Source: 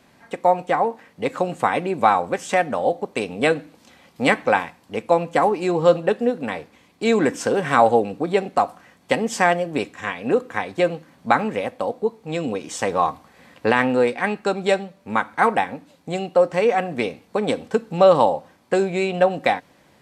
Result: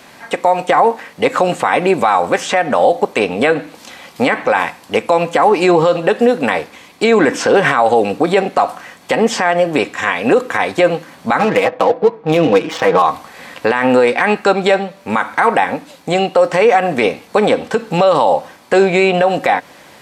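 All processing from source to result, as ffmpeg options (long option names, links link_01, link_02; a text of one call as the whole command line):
ffmpeg -i in.wav -filter_complex "[0:a]asettb=1/sr,asplit=3[link_01][link_02][link_03];[link_01]atrim=end=11.394[link_04];[link_02]atrim=start=11.39:end=13.02,asetpts=PTS-STARTPTS,afade=type=in:duration=0.004:curve=qsin,afade=type=out:start_time=1.626:duration=0.004:curve=qsin,lowpass=4900,aecho=1:1:6.2:0.82,atrim=end_sample=71883,adynamicsmooth=sensitivity=6.5:basefreq=1300[link_05];[link_03]atrim=start=13.016[link_06];[link_04][link_05]acrossfade=duration=0.004:curve1=hsin:curve2=qsin[link_07];[link_07][link_06]acrossfade=duration=0.004:curve1=qsin:curve2=hsin,lowshelf=frequency=340:gain=-11,acrossover=split=2400|5100[link_08][link_09][link_10];[link_08]acompressor=threshold=-19dB:ratio=4[link_11];[link_09]acompressor=threshold=-40dB:ratio=4[link_12];[link_10]acompressor=threshold=-53dB:ratio=4[link_13];[link_11][link_12][link_13]amix=inputs=3:normalize=0,alimiter=level_in=18dB:limit=-1dB:release=50:level=0:latency=1,volume=-1dB" out.wav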